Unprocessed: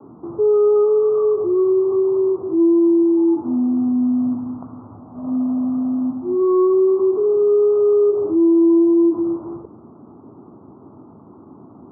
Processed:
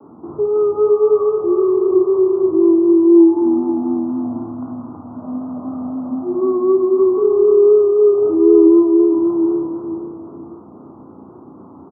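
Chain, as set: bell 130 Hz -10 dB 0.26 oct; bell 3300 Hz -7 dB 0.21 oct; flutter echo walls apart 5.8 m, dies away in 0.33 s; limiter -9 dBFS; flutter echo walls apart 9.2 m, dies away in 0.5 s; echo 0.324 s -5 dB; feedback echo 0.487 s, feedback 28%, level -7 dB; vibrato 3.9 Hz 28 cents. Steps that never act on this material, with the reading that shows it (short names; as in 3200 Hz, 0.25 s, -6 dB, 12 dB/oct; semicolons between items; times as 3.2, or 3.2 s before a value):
bell 3300 Hz: input band ends at 1100 Hz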